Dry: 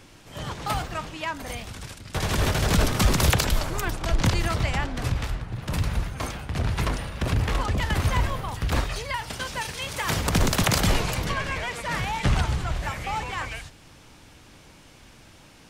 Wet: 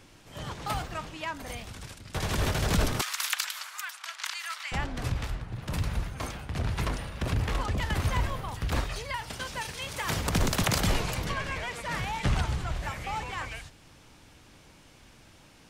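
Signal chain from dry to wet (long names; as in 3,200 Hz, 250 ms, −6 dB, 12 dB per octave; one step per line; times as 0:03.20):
0:03.01–0:04.72: high-pass filter 1,200 Hz 24 dB per octave
level −4.5 dB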